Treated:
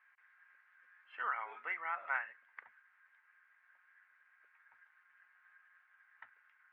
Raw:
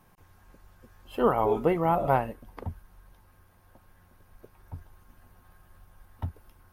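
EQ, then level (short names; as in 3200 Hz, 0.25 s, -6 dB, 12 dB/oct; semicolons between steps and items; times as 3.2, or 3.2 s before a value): Butterworth band-pass 1800 Hz, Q 2.4; +4.0 dB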